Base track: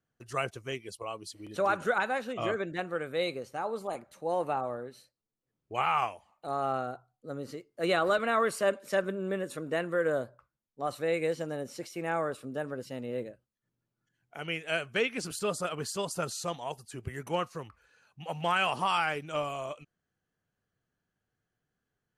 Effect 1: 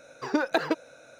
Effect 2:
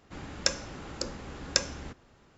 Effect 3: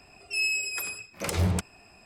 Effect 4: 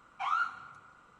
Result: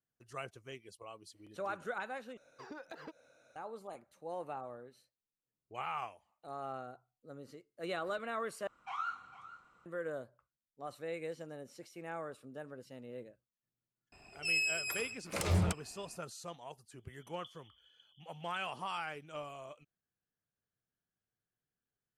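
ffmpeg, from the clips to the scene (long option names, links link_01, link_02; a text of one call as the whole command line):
ffmpeg -i bed.wav -i cue0.wav -i cue1.wav -i cue2.wav -i cue3.wav -filter_complex "[0:a]volume=-11.5dB[link_01];[1:a]acompressor=threshold=-28dB:ratio=5:attack=1.8:release=109:knee=6:detection=rms[link_02];[4:a]aecho=1:1:451:0.178[link_03];[3:a]highshelf=frequency=9000:gain=-4.5[link_04];[2:a]asuperpass=centerf=3200:order=20:qfactor=6.1[link_05];[link_01]asplit=3[link_06][link_07][link_08];[link_06]atrim=end=2.374[link_09];[link_02]atrim=end=1.19,asetpts=PTS-STARTPTS,volume=-14.5dB[link_10];[link_07]atrim=start=3.556:end=8.674[link_11];[link_03]atrim=end=1.19,asetpts=PTS-STARTPTS,volume=-8dB[link_12];[link_08]atrim=start=9.856[link_13];[link_04]atrim=end=2.05,asetpts=PTS-STARTPTS,volume=-5dB,afade=type=in:duration=0.004:curve=hsin,afade=type=out:start_time=2.046:duration=0.004:curve=hsin,adelay=622692S[link_14];[link_05]atrim=end=2.37,asetpts=PTS-STARTPTS,volume=-4.5dB,afade=type=in:duration=0.004:curve=hsin,afade=type=out:start_time=2.366:duration=0.004:curve=hsin,adelay=16980[link_15];[link_09][link_10]acrossfade=duration=0.004:curve1=hsin:curve2=hsin[link_16];[link_16][link_11]acrossfade=duration=0.004:curve1=hsin:curve2=hsin[link_17];[link_17][link_12]acrossfade=duration=0.004:curve1=hsin:curve2=hsin[link_18];[link_18][link_13]acrossfade=duration=0.004:curve1=hsin:curve2=hsin[link_19];[link_19][link_14][link_15]amix=inputs=3:normalize=0" out.wav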